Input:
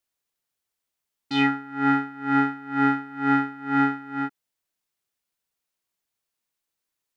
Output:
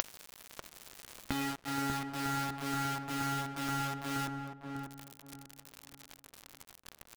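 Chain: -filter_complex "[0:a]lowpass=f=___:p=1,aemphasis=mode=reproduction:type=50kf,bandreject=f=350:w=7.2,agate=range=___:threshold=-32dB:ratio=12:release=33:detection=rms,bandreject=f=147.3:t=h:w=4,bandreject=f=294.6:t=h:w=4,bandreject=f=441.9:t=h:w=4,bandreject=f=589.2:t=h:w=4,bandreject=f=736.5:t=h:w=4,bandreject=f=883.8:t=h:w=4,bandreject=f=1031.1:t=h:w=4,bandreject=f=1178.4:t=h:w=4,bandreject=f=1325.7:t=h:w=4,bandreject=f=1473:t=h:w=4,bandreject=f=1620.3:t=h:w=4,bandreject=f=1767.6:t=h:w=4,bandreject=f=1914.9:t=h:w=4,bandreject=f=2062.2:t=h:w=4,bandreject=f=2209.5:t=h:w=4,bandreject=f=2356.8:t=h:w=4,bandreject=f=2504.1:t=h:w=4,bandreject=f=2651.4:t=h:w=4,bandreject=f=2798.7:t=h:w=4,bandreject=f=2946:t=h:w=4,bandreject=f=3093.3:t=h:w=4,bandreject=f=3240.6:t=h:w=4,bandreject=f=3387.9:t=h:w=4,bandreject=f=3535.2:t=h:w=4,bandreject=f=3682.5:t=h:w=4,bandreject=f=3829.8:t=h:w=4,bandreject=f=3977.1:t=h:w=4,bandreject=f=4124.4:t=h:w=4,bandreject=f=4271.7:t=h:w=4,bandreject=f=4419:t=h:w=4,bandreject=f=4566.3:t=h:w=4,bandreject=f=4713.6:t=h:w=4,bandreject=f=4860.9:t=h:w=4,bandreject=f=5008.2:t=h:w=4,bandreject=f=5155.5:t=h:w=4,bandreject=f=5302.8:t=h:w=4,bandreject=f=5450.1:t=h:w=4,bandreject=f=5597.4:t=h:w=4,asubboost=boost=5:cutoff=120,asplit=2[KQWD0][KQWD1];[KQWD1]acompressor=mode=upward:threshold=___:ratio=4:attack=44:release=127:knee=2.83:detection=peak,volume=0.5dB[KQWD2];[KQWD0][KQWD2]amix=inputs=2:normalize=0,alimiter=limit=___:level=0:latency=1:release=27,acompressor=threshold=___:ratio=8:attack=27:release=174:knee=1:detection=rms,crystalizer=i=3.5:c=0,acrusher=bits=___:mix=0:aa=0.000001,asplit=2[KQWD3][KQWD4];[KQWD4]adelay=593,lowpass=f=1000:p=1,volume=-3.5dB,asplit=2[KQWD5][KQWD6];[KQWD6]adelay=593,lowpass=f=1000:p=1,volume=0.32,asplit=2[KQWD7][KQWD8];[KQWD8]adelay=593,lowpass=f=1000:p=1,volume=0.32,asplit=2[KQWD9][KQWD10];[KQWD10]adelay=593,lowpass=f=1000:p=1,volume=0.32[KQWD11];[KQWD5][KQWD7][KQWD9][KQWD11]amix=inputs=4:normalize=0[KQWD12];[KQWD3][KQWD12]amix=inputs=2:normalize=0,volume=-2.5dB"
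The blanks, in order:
1300, -11dB, -28dB, -9dB, -33dB, 5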